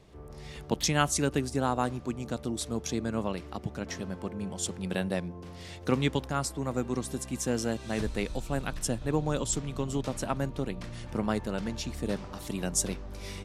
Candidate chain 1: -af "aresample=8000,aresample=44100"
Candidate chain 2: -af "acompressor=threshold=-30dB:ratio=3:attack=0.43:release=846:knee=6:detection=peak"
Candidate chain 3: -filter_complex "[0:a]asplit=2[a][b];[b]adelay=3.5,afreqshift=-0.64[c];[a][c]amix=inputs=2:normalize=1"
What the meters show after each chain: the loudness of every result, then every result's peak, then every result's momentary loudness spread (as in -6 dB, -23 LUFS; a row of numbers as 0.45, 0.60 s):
-33.0, -39.5, -35.5 LUFS; -9.0, -21.5, -15.5 dBFS; 9, 6, 9 LU